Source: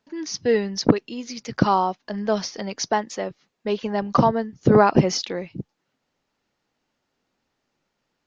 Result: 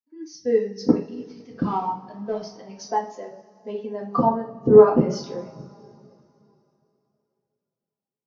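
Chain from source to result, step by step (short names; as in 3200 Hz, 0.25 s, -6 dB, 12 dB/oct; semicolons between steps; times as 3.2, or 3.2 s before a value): 0.99–2.39 CVSD 32 kbps; two-slope reverb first 0.52 s, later 4.5 s, from -16 dB, DRR -2.5 dB; spectral expander 1.5:1; gain -3 dB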